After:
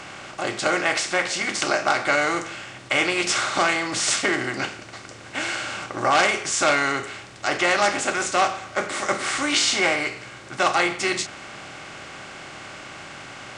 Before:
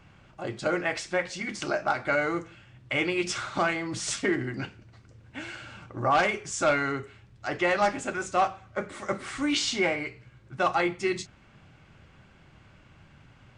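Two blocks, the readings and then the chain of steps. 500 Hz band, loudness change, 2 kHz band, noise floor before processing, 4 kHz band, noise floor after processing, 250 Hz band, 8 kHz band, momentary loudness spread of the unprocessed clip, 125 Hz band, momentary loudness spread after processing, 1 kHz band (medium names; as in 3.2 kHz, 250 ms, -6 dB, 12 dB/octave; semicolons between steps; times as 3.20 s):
+3.5 dB, +6.0 dB, +8.0 dB, -56 dBFS, +10.0 dB, -42 dBFS, +2.0 dB, +11.0 dB, 14 LU, -0.5 dB, 18 LU, +5.5 dB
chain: spectral levelling over time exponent 0.6; tilt EQ +2 dB/octave; trim +1.5 dB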